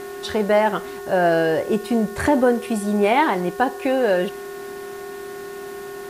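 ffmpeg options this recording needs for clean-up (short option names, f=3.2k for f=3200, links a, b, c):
-af "adeclick=t=4,bandreject=f=363.5:t=h:w=4,bandreject=f=727:t=h:w=4,bandreject=f=1.0905k:t=h:w=4,bandreject=f=1.454k:t=h:w=4,bandreject=f=1.8175k:t=h:w=4,bandreject=f=400:w=30,afwtdn=0.005"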